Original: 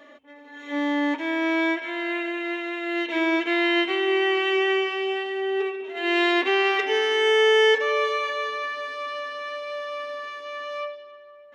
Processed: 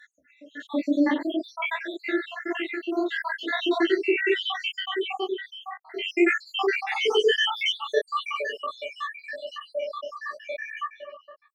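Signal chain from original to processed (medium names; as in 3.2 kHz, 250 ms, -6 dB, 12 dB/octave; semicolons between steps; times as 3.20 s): random holes in the spectrogram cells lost 81%; 10.33–10.91 s: peaking EQ 760 Hz +6.5 dB 1.1 oct; detune thickener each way 54 cents; trim +8.5 dB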